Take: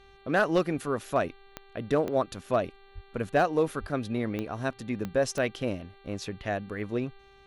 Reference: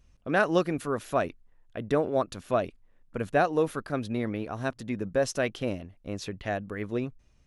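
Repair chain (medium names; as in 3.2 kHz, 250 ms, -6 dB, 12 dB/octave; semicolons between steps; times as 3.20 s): clip repair -15.5 dBFS; de-click; de-hum 393.5 Hz, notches 11; 2.94–3.06 s: high-pass 140 Hz 24 dB/octave; 3.80–3.92 s: high-pass 140 Hz 24 dB/octave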